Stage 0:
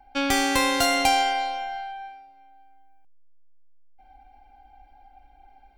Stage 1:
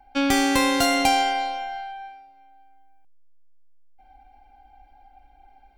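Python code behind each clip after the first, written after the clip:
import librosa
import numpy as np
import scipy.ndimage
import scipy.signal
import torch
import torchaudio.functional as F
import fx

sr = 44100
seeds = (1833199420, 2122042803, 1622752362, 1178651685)

y = fx.dynamic_eq(x, sr, hz=220.0, q=0.82, threshold_db=-40.0, ratio=4.0, max_db=6)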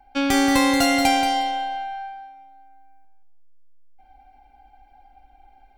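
y = fx.echo_feedback(x, sr, ms=180, feedback_pct=16, wet_db=-7)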